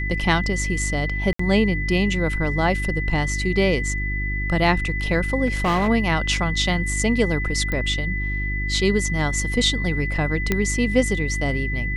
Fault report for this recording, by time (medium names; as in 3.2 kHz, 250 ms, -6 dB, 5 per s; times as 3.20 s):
hum 50 Hz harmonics 7 -26 dBFS
whine 2 kHz -27 dBFS
1.33–1.39 s: dropout 64 ms
5.46–5.89 s: clipped -16.5 dBFS
7.72 s: pop -13 dBFS
10.52 s: pop -6 dBFS